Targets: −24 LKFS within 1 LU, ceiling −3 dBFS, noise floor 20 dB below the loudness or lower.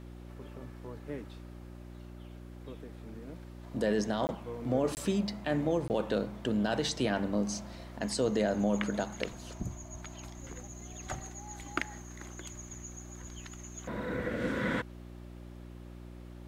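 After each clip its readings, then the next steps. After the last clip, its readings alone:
number of dropouts 3; longest dropout 19 ms; mains hum 60 Hz; hum harmonics up to 360 Hz; level of the hum −45 dBFS; integrated loudness −34.5 LKFS; sample peak −16.0 dBFS; target loudness −24.0 LKFS
→ repair the gap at 0:04.27/0:04.95/0:05.88, 19 ms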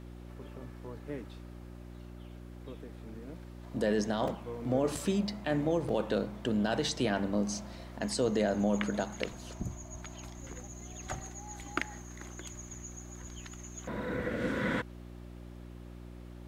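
number of dropouts 0; mains hum 60 Hz; hum harmonics up to 360 Hz; level of the hum −45 dBFS
→ hum removal 60 Hz, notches 6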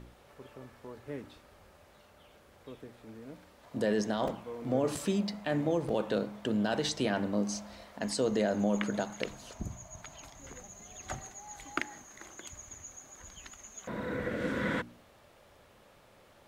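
mains hum none found; integrated loudness −33.5 LKFS; sample peak −15.5 dBFS; target loudness −24.0 LKFS
→ level +9.5 dB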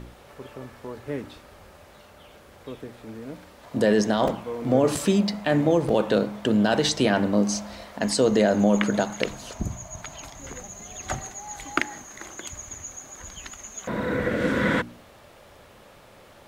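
integrated loudness −24.0 LKFS; sample peak −6.0 dBFS; background noise floor −51 dBFS

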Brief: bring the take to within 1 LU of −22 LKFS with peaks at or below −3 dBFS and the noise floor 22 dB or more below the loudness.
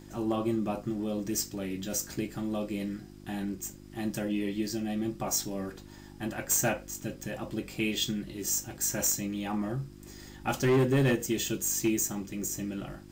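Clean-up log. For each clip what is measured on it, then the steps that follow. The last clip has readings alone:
share of clipped samples 0.6%; peaks flattened at −20.0 dBFS; mains hum 50 Hz; hum harmonics up to 350 Hz; level of the hum −46 dBFS; integrated loudness −31.0 LKFS; sample peak −20.0 dBFS; target loudness −22.0 LKFS
→ clipped peaks rebuilt −20 dBFS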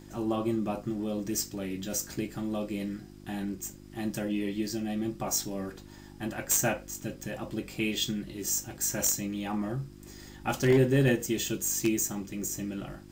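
share of clipped samples 0.0%; mains hum 50 Hz; hum harmonics up to 350 Hz; level of the hum −46 dBFS
→ hum removal 50 Hz, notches 7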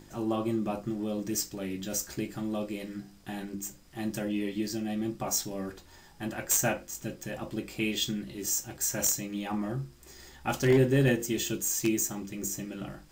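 mains hum none found; integrated loudness −31.0 LKFS; sample peak −11.0 dBFS; target loudness −22.0 LKFS
→ level +9 dB
brickwall limiter −3 dBFS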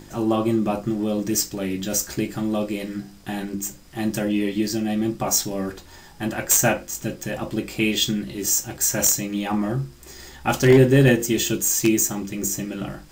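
integrated loudness −22.0 LKFS; sample peak −3.0 dBFS; background noise floor −46 dBFS

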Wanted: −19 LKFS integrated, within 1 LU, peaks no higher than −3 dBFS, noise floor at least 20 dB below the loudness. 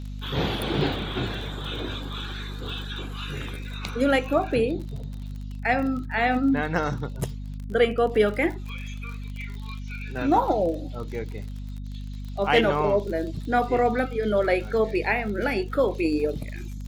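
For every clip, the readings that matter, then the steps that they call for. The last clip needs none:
crackle rate 39 per second; mains hum 50 Hz; hum harmonics up to 250 Hz; level of the hum −32 dBFS; integrated loudness −26.0 LKFS; sample peak −7.0 dBFS; target loudness −19.0 LKFS
→ click removal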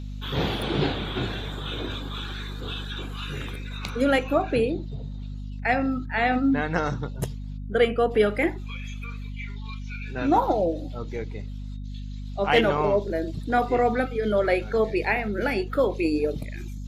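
crackle rate 0.059 per second; mains hum 50 Hz; hum harmonics up to 250 Hz; level of the hum −32 dBFS
→ hum removal 50 Hz, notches 5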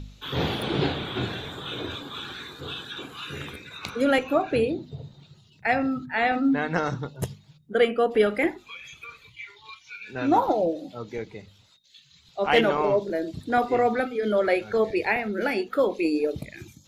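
mains hum none found; integrated loudness −25.5 LKFS; sample peak −7.0 dBFS; target loudness −19.0 LKFS
→ level +6.5 dB
brickwall limiter −3 dBFS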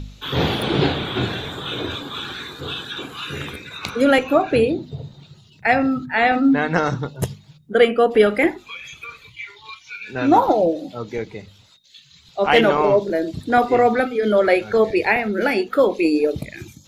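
integrated loudness −19.5 LKFS; sample peak −3.0 dBFS; background noise floor −51 dBFS

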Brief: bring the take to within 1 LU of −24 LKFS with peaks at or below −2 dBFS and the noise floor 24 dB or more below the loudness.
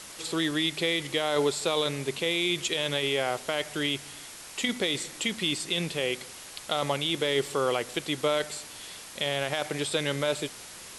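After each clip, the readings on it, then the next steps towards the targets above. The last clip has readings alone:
background noise floor −45 dBFS; target noise floor −53 dBFS; integrated loudness −28.5 LKFS; sample peak −13.5 dBFS; target loudness −24.0 LKFS
→ broadband denoise 8 dB, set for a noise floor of −45 dBFS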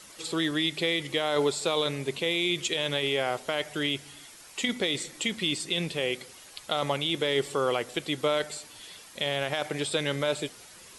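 background noise floor −50 dBFS; target noise floor −53 dBFS
→ broadband denoise 6 dB, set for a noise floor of −50 dBFS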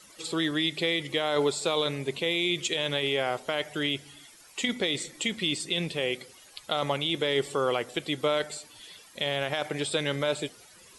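background noise floor −54 dBFS; integrated loudness −28.5 LKFS; sample peak −13.5 dBFS; target loudness −24.0 LKFS
→ level +4.5 dB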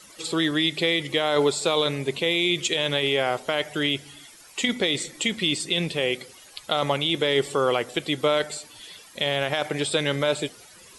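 integrated loudness −24.0 LKFS; sample peak −9.0 dBFS; background noise floor −49 dBFS

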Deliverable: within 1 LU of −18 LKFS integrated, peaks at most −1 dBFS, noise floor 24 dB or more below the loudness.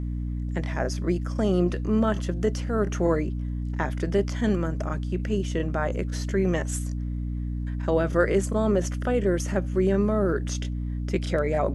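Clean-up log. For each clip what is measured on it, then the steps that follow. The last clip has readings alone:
mains hum 60 Hz; hum harmonics up to 300 Hz; level of the hum −27 dBFS; integrated loudness −26.5 LKFS; sample peak −8.5 dBFS; target loudness −18.0 LKFS
→ hum removal 60 Hz, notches 5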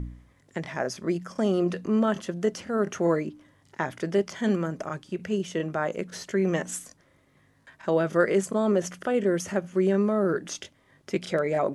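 mains hum none found; integrated loudness −27.5 LKFS; sample peak −9.5 dBFS; target loudness −18.0 LKFS
→ level +9.5 dB
brickwall limiter −1 dBFS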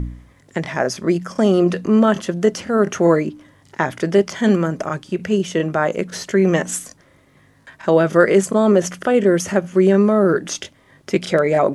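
integrated loudness −18.0 LKFS; sample peak −1.0 dBFS; background noise floor −54 dBFS

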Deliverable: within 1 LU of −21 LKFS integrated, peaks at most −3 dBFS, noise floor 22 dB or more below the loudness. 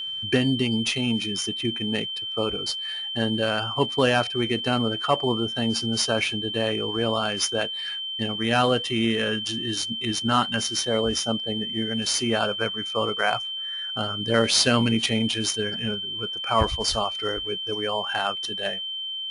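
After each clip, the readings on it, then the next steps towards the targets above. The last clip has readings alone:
interfering tone 3,100 Hz; level of the tone −29 dBFS; integrated loudness −24.5 LKFS; sample peak −6.0 dBFS; target loudness −21.0 LKFS
→ notch filter 3,100 Hz, Q 30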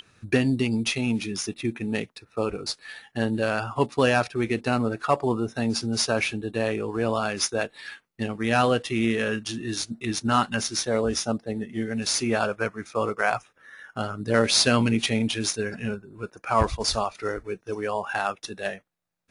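interfering tone none found; integrated loudness −26.0 LKFS; sample peak −6.0 dBFS; target loudness −21.0 LKFS
→ level +5 dB
brickwall limiter −3 dBFS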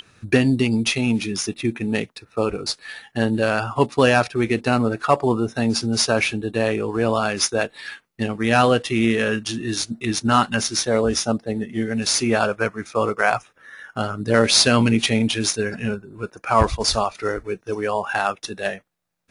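integrated loudness −21.0 LKFS; sample peak −3.0 dBFS; background noise floor −60 dBFS

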